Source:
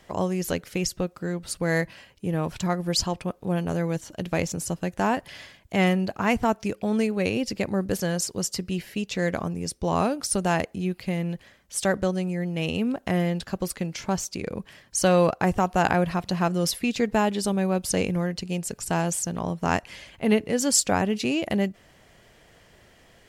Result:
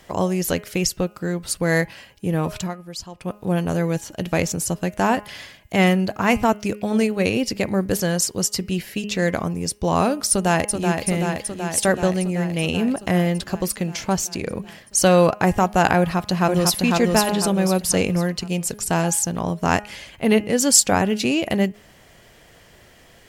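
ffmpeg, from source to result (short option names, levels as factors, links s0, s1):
-filter_complex "[0:a]asplit=2[s0][s1];[s1]afade=t=in:st=10.3:d=0.01,afade=t=out:st=11.04:d=0.01,aecho=0:1:380|760|1140|1520|1900|2280|2660|3040|3420|3800|4180|4560:0.562341|0.421756|0.316317|0.237238|0.177928|0.133446|0.100085|0.0750635|0.0562976|0.0422232|0.0316674|0.0237506[s2];[s0][s2]amix=inputs=2:normalize=0,asplit=2[s3][s4];[s4]afade=t=in:st=15.98:d=0.01,afade=t=out:st=16.82:d=0.01,aecho=0:1:500|1000|1500|2000|2500:0.749894|0.299958|0.119983|0.0479932|0.0191973[s5];[s3][s5]amix=inputs=2:normalize=0,asplit=3[s6][s7][s8];[s6]atrim=end=2.75,asetpts=PTS-STARTPTS,afade=t=out:st=2.55:d=0.2:silence=0.177828[s9];[s7]atrim=start=2.75:end=3.15,asetpts=PTS-STARTPTS,volume=0.178[s10];[s8]atrim=start=3.15,asetpts=PTS-STARTPTS,afade=t=in:d=0.2:silence=0.177828[s11];[s9][s10][s11]concat=n=3:v=0:a=1,lowpass=f=2500:p=1,aemphasis=mode=production:type=75fm,bandreject=f=207.7:t=h:w=4,bandreject=f=415.4:t=h:w=4,bandreject=f=623.1:t=h:w=4,bandreject=f=830.8:t=h:w=4,bandreject=f=1038.5:t=h:w=4,bandreject=f=1246.2:t=h:w=4,bandreject=f=1453.9:t=h:w=4,bandreject=f=1661.6:t=h:w=4,bandreject=f=1869.3:t=h:w=4,bandreject=f=2077:t=h:w=4,bandreject=f=2284.7:t=h:w=4,bandreject=f=2492.4:t=h:w=4,bandreject=f=2700.1:t=h:w=4,bandreject=f=2907.8:t=h:w=4,bandreject=f=3115.5:t=h:w=4,volume=1.88"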